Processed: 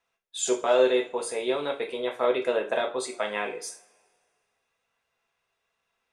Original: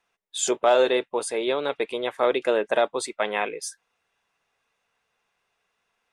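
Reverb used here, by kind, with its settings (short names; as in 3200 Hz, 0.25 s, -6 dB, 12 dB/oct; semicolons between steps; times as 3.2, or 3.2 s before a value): two-slope reverb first 0.34 s, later 1.9 s, from -26 dB, DRR 1.5 dB; gain -5.5 dB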